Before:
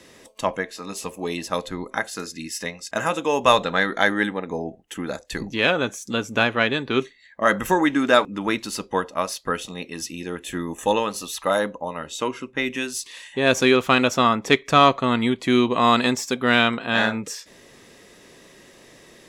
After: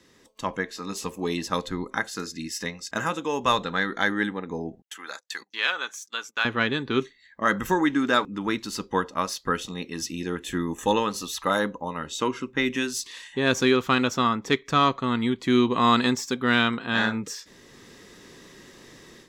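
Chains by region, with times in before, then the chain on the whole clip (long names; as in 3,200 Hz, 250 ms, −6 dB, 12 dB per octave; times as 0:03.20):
0:04.82–0:06.45: high-pass filter 990 Hz + noise gate −45 dBFS, range −23 dB
whole clip: graphic EQ with 15 bands 630 Hz −9 dB, 2,500 Hz −5 dB, 10,000 Hz −8 dB; automatic gain control gain up to 10 dB; level −7 dB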